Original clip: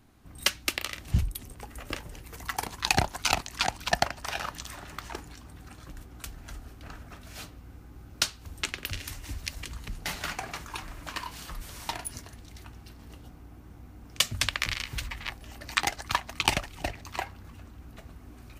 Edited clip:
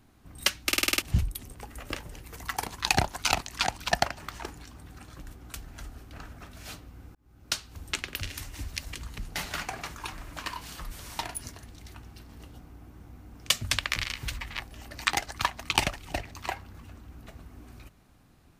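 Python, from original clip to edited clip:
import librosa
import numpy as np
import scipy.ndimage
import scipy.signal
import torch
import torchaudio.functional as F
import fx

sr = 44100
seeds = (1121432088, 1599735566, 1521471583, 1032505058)

y = fx.edit(x, sr, fx.stutter_over(start_s=0.67, slice_s=0.05, count=7),
    fx.cut(start_s=4.2, length_s=0.7),
    fx.fade_in_span(start_s=7.85, length_s=0.56), tone=tone)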